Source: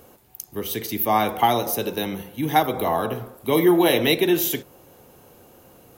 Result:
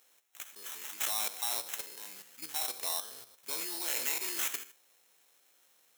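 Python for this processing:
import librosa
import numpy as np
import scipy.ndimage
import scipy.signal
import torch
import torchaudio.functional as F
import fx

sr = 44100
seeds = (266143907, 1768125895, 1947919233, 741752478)

y = fx.spec_trails(x, sr, decay_s=0.42)
y = fx.level_steps(y, sr, step_db=11)
y = fx.sample_hold(y, sr, seeds[0], rate_hz=4700.0, jitter_pct=0)
y = np.diff(y, prepend=0.0)
y = F.gain(torch.from_numpy(y), -1.5).numpy()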